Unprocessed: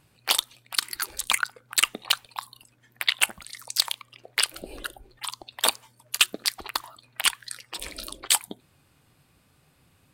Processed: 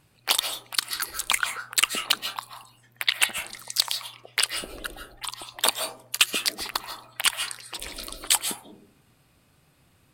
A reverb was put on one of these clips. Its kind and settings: digital reverb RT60 0.55 s, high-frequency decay 0.3×, pre-delay 0.105 s, DRR 6.5 dB

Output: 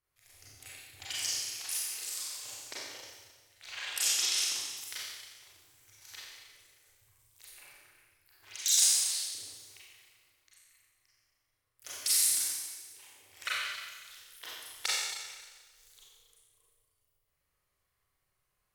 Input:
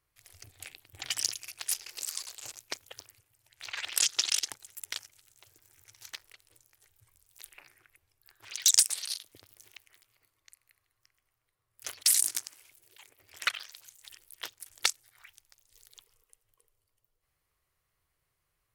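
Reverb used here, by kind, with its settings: Schroeder reverb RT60 1.4 s, combs from 30 ms, DRR -8 dB; gain -9 dB

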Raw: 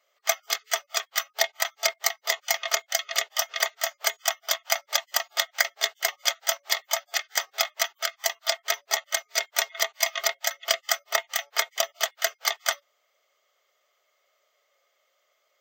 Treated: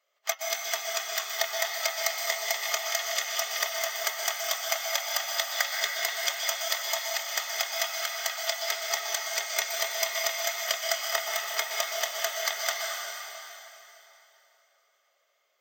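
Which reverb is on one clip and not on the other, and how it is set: plate-style reverb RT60 3.3 s, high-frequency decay 0.9×, pre-delay 0.11 s, DRR -1 dB; gain -5.5 dB

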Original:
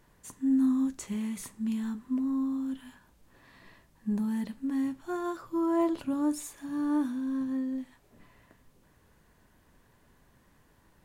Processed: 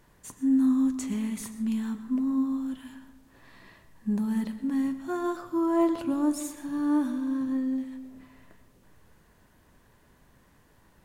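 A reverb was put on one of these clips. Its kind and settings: digital reverb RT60 1.1 s, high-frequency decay 0.35×, pre-delay 80 ms, DRR 11.5 dB; gain +2.5 dB

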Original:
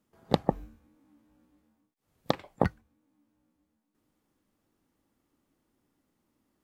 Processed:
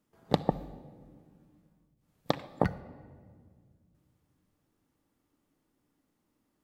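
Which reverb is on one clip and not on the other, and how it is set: shoebox room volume 2500 m³, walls mixed, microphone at 0.42 m; gain -1.5 dB

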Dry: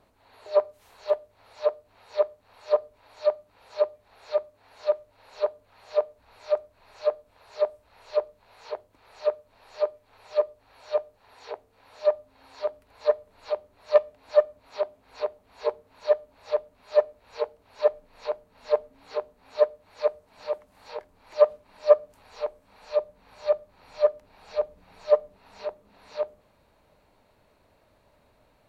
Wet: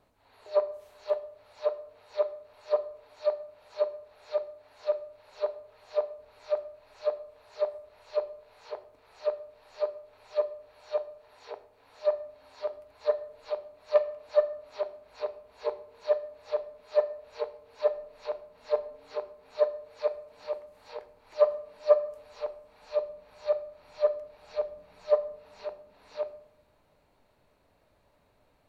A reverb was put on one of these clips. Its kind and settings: shoebox room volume 160 m³, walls mixed, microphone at 0.31 m; gain -5 dB

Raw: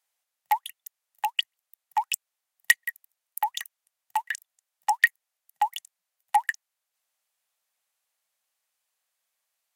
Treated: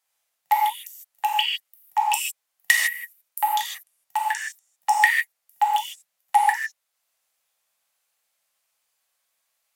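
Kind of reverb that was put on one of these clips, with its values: non-linear reverb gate 0.18 s flat, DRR -3 dB; gain +1 dB

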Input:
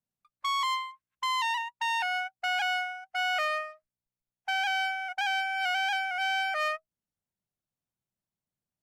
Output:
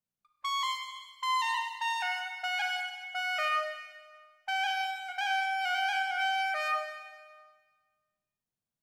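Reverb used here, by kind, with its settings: Schroeder reverb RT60 1.5 s, combs from 31 ms, DRR 4 dB; gain -3 dB

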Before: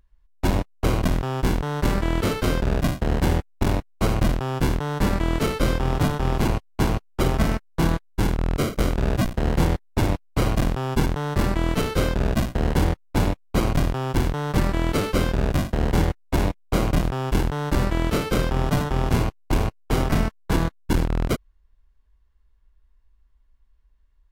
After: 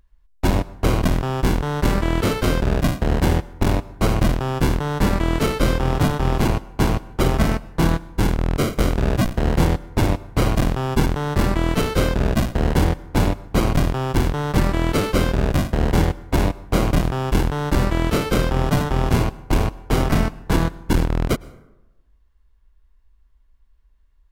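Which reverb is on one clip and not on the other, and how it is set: plate-style reverb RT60 1 s, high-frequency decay 0.5×, pre-delay 95 ms, DRR 20 dB; gain +3 dB

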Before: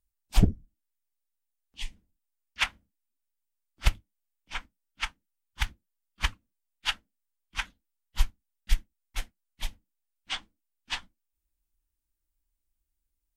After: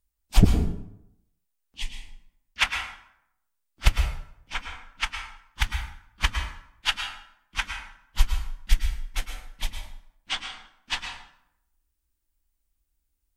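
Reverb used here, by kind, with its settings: plate-style reverb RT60 0.77 s, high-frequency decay 0.65×, pre-delay 95 ms, DRR 4.5 dB; gain +4 dB

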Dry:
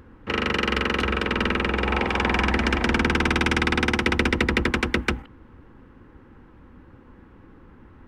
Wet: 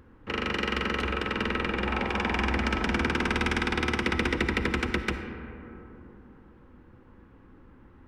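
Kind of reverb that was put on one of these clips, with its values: digital reverb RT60 3.5 s, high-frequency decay 0.3×, pre-delay 15 ms, DRR 7.5 dB; gain -6 dB

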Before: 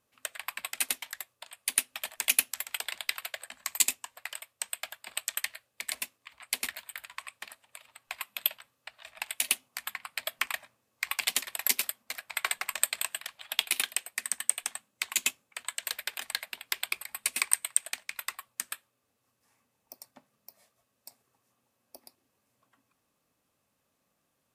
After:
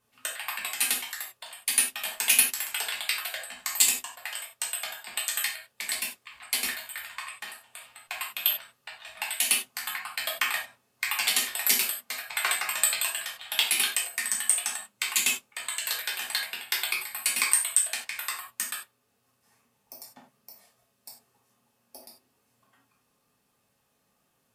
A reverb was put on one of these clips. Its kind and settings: non-linear reverb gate 0.12 s falling, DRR -3.5 dB

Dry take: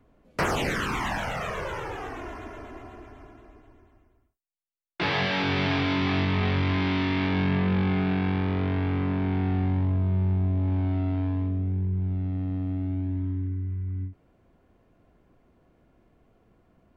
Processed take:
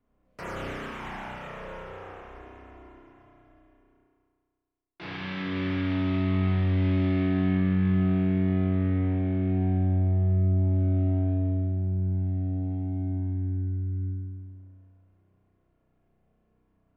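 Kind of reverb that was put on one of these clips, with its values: spring tank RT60 1.9 s, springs 32 ms, chirp 65 ms, DRR -5.5 dB; gain -15.5 dB

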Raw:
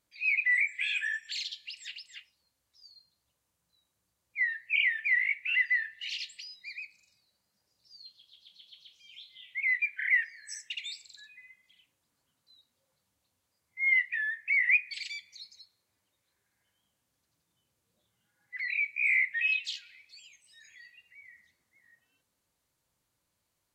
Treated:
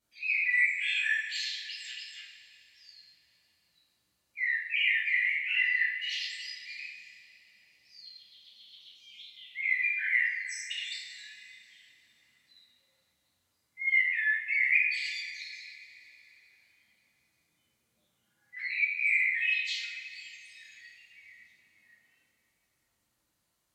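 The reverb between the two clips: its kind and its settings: two-slope reverb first 0.62 s, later 3.5 s, from -17 dB, DRR -8 dB; gain -7 dB

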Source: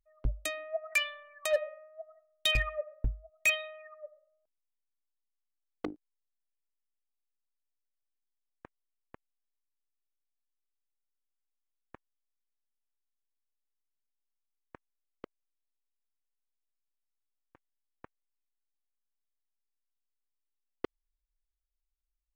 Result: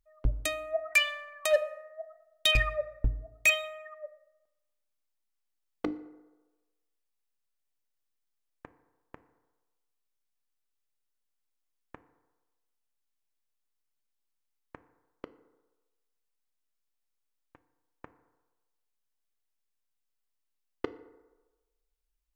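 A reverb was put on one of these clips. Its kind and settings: FDN reverb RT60 1.2 s, low-frequency decay 0.75×, high-frequency decay 0.45×, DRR 12.5 dB; gain +3.5 dB

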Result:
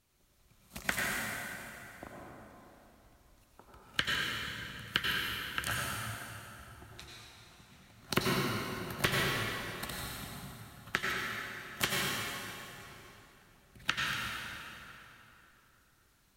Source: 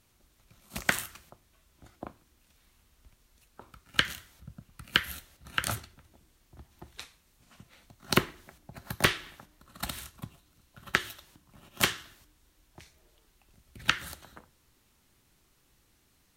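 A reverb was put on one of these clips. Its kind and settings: plate-style reverb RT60 3.2 s, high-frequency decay 0.75×, pre-delay 75 ms, DRR -4 dB; gain -7 dB

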